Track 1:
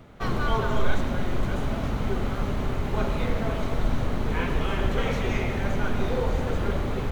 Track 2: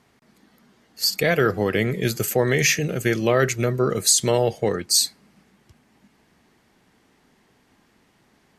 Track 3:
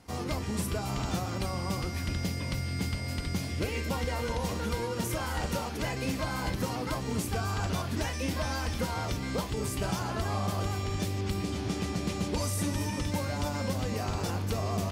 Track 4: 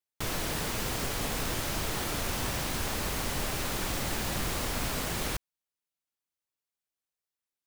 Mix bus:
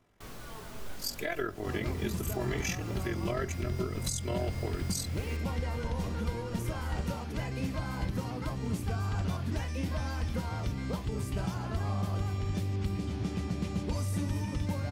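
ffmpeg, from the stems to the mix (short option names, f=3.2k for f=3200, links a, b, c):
-filter_complex "[0:a]flanger=delay=17.5:depth=3.5:speed=2.3,volume=-19dB[a];[1:a]aecho=1:1:3:0.89,tremolo=f=43:d=0.71,bandreject=f=4.4k:w=9.1,volume=-11.5dB,asplit=2[b][c];[2:a]bass=f=250:g=7,treble=f=4k:g=-4,adelay=1550,volume=-6dB[d];[3:a]volume=-17dB[e];[c]apad=whole_len=338150[f];[e][f]sidechaincompress=threshold=-34dB:ratio=8:attack=16:release=190[g];[a][b][d][g]amix=inputs=4:normalize=0,alimiter=limit=-21.5dB:level=0:latency=1:release=336"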